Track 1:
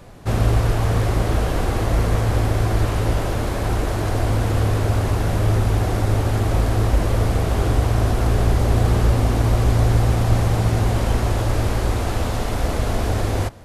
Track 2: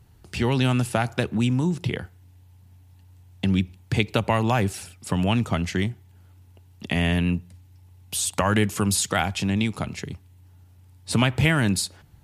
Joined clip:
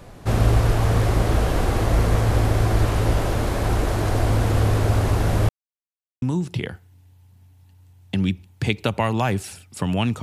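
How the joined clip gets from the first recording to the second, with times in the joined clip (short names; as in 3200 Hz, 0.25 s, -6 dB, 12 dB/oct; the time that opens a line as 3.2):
track 1
5.49–6.22 mute
6.22 switch to track 2 from 1.52 s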